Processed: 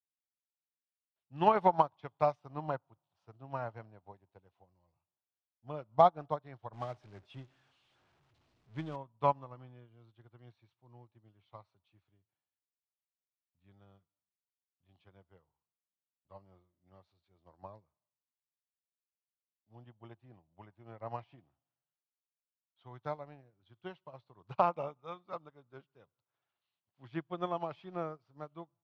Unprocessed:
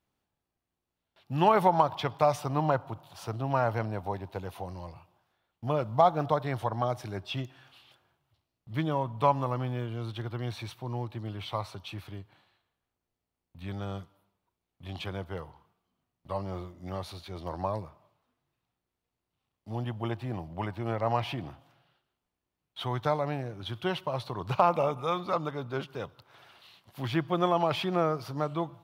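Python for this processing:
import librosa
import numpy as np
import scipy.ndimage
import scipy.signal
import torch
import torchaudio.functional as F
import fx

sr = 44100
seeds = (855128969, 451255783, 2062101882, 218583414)

y = fx.zero_step(x, sr, step_db=-33.0, at=(6.73, 8.96))
y = fx.air_absorb(y, sr, metres=110.0)
y = fx.upward_expand(y, sr, threshold_db=-40.0, expansion=2.5)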